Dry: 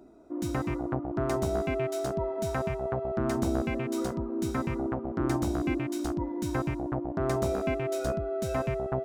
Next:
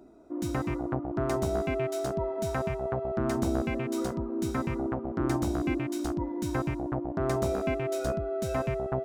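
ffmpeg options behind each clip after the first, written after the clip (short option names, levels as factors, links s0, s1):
-af anull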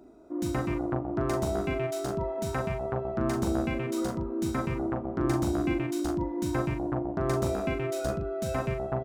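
-filter_complex "[0:a]asplit=2[s0][s1];[s1]adelay=40,volume=0.473[s2];[s0][s2]amix=inputs=2:normalize=0"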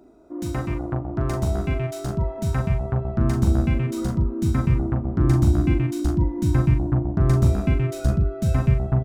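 -af "asubboost=boost=7:cutoff=180,volume=1.19"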